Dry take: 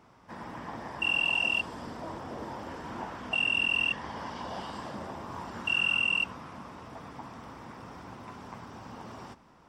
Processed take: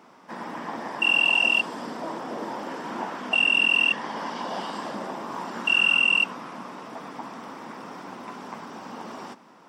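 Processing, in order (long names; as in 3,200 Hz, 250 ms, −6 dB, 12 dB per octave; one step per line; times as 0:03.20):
high-pass filter 190 Hz 24 dB per octave
level +7 dB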